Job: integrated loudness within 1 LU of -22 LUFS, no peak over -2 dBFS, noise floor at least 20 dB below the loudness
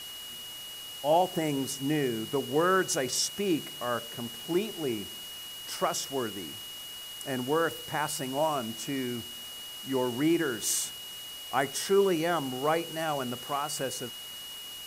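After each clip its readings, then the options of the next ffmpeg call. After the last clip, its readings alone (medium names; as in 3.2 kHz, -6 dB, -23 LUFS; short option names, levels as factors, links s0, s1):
steady tone 2.9 kHz; tone level -41 dBFS; noise floor -42 dBFS; noise floor target -51 dBFS; loudness -30.5 LUFS; peak level -11.5 dBFS; loudness target -22.0 LUFS
-> -af "bandreject=f=2900:w=30"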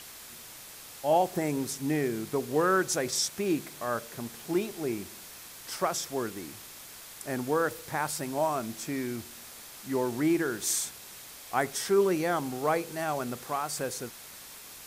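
steady tone not found; noise floor -47 dBFS; noise floor target -50 dBFS
-> -af "afftdn=nr=6:nf=-47"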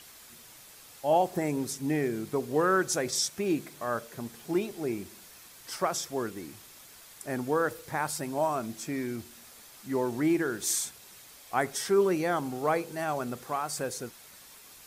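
noise floor -52 dBFS; loudness -30.0 LUFS; peak level -12.0 dBFS; loudness target -22.0 LUFS
-> -af "volume=2.51"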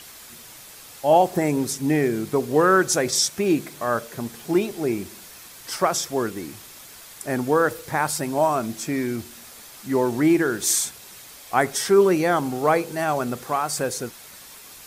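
loudness -22.0 LUFS; peak level -4.0 dBFS; noise floor -44 dBFS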